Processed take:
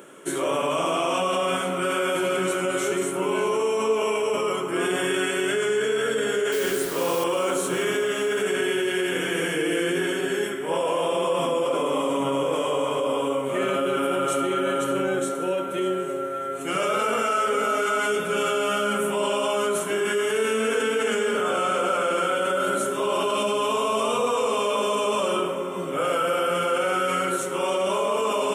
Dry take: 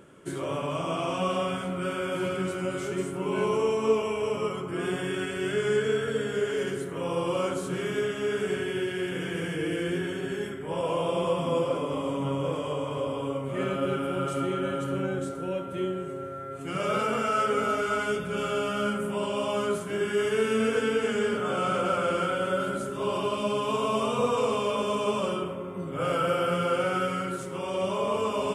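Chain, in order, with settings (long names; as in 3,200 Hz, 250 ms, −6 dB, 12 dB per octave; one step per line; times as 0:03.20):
high-pass filter 300 Hz 12 dB per octave
high-shelf EQ 7,700 Hz +8.5 dB
notch filter 4,800 Hz, Q 6.3
in parallel at +1.5 dB: compressor whose output falls as the input rises −32 dBFS
0:06.52–0:07.24: on the sum: bit-depth reduction 6 bits, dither triangular
on a send: feedback echo with a high-pass in the loop 594 ms, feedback 43%, level −16 dB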